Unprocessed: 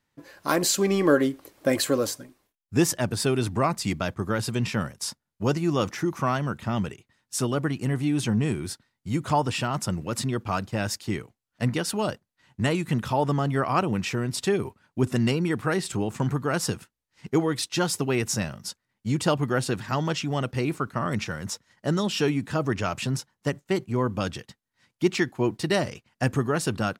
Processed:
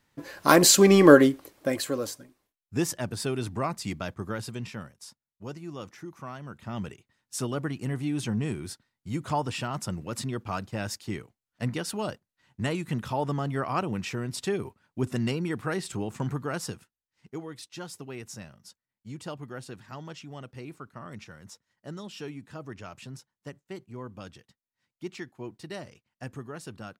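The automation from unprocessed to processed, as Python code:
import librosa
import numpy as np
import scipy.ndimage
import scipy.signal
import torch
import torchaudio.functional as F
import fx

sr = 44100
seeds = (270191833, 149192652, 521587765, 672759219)

y = fx.gain(x, sr, db=fx.line((1.13, 6.0), (1.78, -6.0), (4.26, -6.0), (5.07, -15.0), (6.36, -15.0), (6.91, -5.0), (16.41, -5.0), (17.29, -15.0)))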